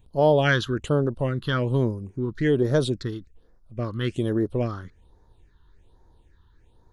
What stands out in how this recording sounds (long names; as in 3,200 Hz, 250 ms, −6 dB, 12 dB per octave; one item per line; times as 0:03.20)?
phaser sweep stages 6, 1.2 Hz, lowest notch 600–2,800 Hz